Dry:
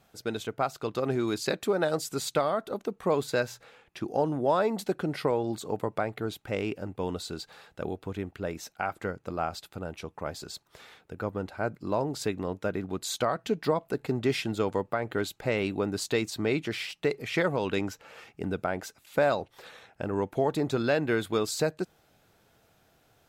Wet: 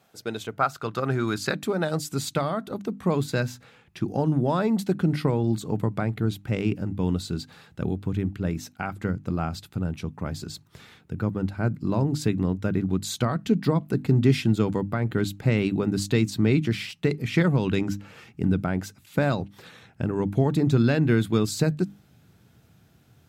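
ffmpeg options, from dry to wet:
-filter_complex "[0:a]asettb=1/sr,asplit=3[s0][s1][s2];[s0]atrim=end=0.594[s3];[s1]atrim=start=0.59:end=1.54,asetpts=PTS-STARTPTS,afade=t=in:d=0.004:c=qsin,afade=t=out:st=0.946:d=0.004:c=qsin,equalizer=f=1400:w=2.1:g=9[s4];[s2]atrim=start=1.536[s5];[s3][s4]acrossfade=d=0.004:c1=hsin:c2=qsin[s6];[s6][s5]acrossfade=d=0.004:c1=qsin:c2=hsin,highpass=110,bandreject=f=50:t=h:w=6,bandreject=f=100:t=h:w=6,bandreject=f=150:t=h:w=6,bandreject=f=200:t=h:w=6,bandreject=f=250:t=h:w=6,bandreject=f=300:t=h:w=6,asubboost=boost=8.5:cutoff=190,volume=1.19"

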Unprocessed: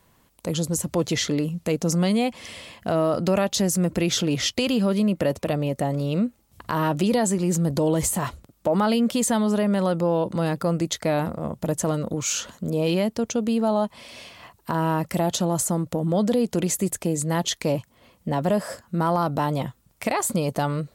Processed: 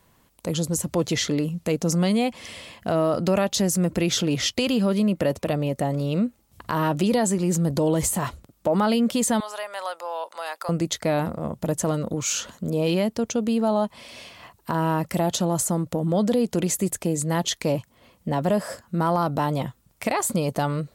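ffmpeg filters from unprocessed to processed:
-filter_complex "[0:a]asettb=1/sr,asplit=3[s0][s1][s2];[s0]atrim=end=9.404[s3];[s1]atrim=start=9.4:end=10.69,asetpts=PTS-STARTPTS,afade=t=in:d=0.004:c=qsin,afade=t=out:st=1.286:d=0.004:c=qsin,highpass=f=720:w=0.5412,highpass=f=720:w=1.3066[s4];[s2]atrim=start=10.686[s5];[s3][s4]acrossfade=d=0.004:c1=hsin:c2=qsin[s6];[s6][s5]acrossfade=d=0.004:c1=qsin:c2=hsin"

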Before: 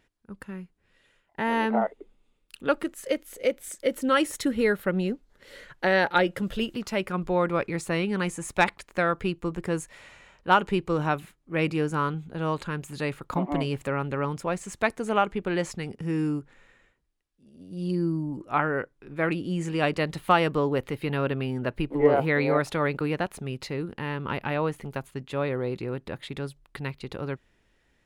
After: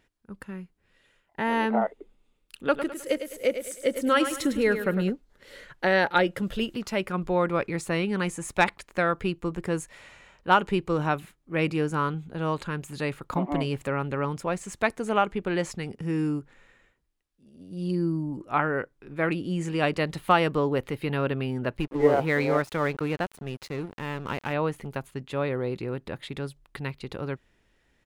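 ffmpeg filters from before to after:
-filter_complex "[0:a]asplit=3[s0][s1][s2];[s0]afade=t=out:st=2.72:d=0.02[s3];[s1]aecho=1:1:104|208|312|416:0.335|0.131|0.0509|0.0199,afade=t=in:st=2.72:d=0.02,afade=t=out:st=5.09:d=0.02[s4];[s2]afade=t=in:st=5.09:d=0.02[s5];[s3][s4][s5]amix=inputs=3:normalize=0,asettb=1/sr,asplit=3[s6][s7][s8];[s6]atrim=end=21.774[s9];[s7]atrim=start=21.77:end=24.53,asetpts=PTS-STARTPTS,afade=t=in:d=0.004:c=qsin,afade=t=out:st=2.756:d=0.004:c=qsin,aeval=exprs='sgn(val(0))*max(abs(val(0))-0.00794,0)':c=same[s10];[s8]atrim=start=24.526[s11];[s9][s10]acrossfade=d=0.004:c1=hsin:c2=qsin[s12];[s12][s11]acrossfade=d=0.004:c1=qsin:c2=hsin"

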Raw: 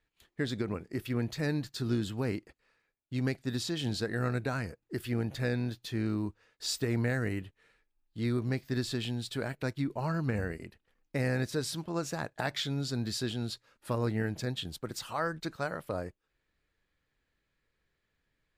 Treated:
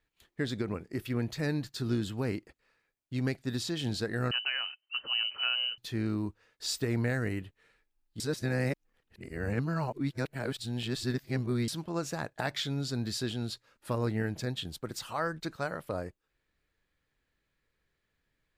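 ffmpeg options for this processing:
-filter_complex "[0:a]asettb=1/sr,asplit=3[s0][s1][s2];[s0]atrim=end=4.314[s3];[s1]atrim=start=4.31:end=5.78,asetpts=PTS-STARTPTS,afade=t=in:d=0.004:c=qsin,afade=t=out:st=1.466:d=0.004:c=qsin,lowpass=f=2600:t=q:w=0.5098,lowpass=f=2600:t=q:w=0.6013,lowpass=f=2600:t=q:w=0.9,lowpass=f=2600:t=q:w=2.563,afreqshift=-3100[s4];[s2]atrim=start=5.776[s5];[s3][s4]acrossfade=d=0.004:c1=hsin:c2=qsin[s6];[s6][s5]acrossfade=d=0.004:c1=qsin:c2=hsin,asplit=3[s7][s8][s9];[s7]atrim=end=8.202[s10];[s8]atrim=start=8.198:end=11.682,asetpts=PTS-STARTPTS,areverse[s11];[s9]atrim=start=11.678[s12];[s10][s11]acrossfade=d=0.004:c1=hsin:c2=hsin[s13];[s13][s12]acrossfade=d=0.004:c1=hsin:c2=hsin"

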